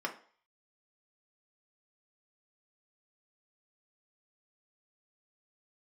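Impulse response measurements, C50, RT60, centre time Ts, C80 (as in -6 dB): 12.0 dB, 0.45 s, 11 ms, 17.0 dB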